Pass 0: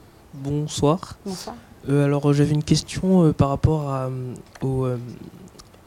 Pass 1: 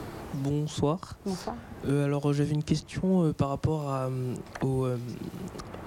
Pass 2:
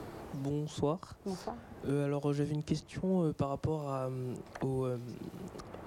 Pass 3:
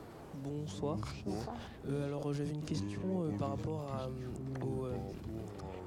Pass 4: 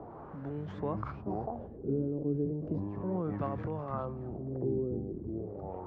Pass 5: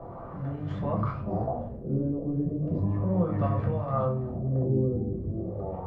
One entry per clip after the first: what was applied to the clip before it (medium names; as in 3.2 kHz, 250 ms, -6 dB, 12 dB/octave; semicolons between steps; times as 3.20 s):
three bands compressed up and down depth 70%; trim -7.5 dB
peaking EQ 530 Hz +4 dB 1.8 oct; trim -8 dB
ever faster or slower copies 98 ms, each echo -6 st, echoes 2, each echo -6 dB; pre-echo 91 ms -19 dB; decay stretcher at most 38 dB/s; trim -6 dB
LFO low-pass sine 0.35 Hz 340–1700 Hz; trim +1.5 dB
reverberation RT60 0.50 s, pre-delay 3 ms, DRR -2 dB